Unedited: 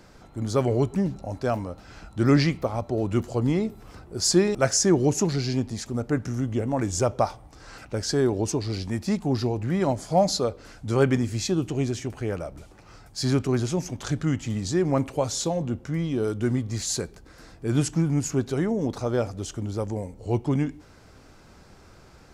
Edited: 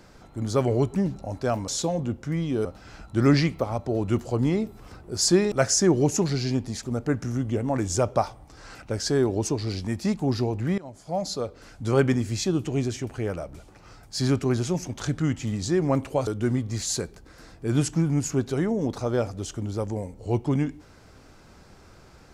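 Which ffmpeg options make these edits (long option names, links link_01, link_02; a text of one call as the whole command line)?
ffmpeg -i in.wav -filter_complex "[0:a]asplit=5[link_01][link_02][link_03][link_04][link_05];[link_01]atrim=end=1.682[link_06];[link_02]atrim=start=15.298:end=16.272[link_07];[link_03]atrim=start=1.678:end=9.81,asetpts=PTS-STARTPTS,afade=type=out:start_time=8.128:duration=0.004:curve=hsin:silence=0.0707946[link_08];[link_04]atrim=start=9.81:end=15.302,asetpts=PTS-STARTPTS,afade=type=in:duration=1.09:silence=0.0707946[link_09];[link_05]atrim=start=16.268[link_10];[link_06][link_07]acrossfade=duration=0.004:curve1=hsin:curve2=hsin[link_11];[link_08][link_09]concat=n=2:v=0:a=1[link_12];[link_11][link_12]acrossfade=duration=0.004:curve1=hsin:curve2=hsin[link_13];[link_13][link_10]acrossfade=duration=0.004:curve1=hsin:curve2=hsin" out.wav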